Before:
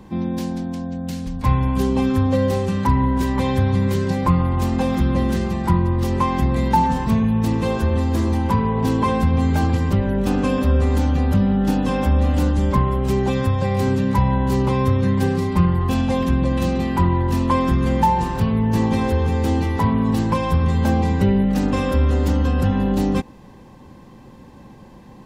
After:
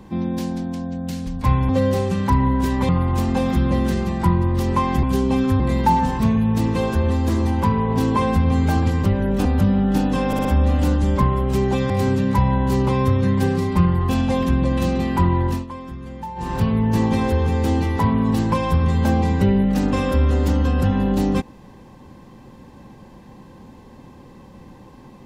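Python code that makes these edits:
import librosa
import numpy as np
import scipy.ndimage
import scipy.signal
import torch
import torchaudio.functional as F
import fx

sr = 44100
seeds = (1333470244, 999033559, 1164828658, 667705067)

y = fx.edit(x, sr, fx.move(start_s=1.69, length_s=0.57, to_s=6.47),
    fx.cut(start_s=3.46, length_s=0.87),
    fx.cut(start_s=10.32, length_s=0.86),
    fx.stutter(start_s=12.0, slice_s=0.06, count=4),
    fx.cut(start_s=13.45, length_s=0.25),
    fx.fade_down_up(start_s=17.27, length_s=1.07, db=-15.5, fade_s=0.19), tone=tone)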